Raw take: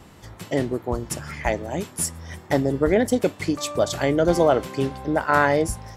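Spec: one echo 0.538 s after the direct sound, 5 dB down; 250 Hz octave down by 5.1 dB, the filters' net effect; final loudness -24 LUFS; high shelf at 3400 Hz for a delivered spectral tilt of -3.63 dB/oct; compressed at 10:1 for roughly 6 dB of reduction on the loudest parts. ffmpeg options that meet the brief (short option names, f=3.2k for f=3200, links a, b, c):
-af "equalizer=f=250:t=o:g=-7,highshelf=f=3.4k:g=6,acompressor=threshold=-20dB:ratio=10,aecho=1:1:538:0.562,volume=2dB"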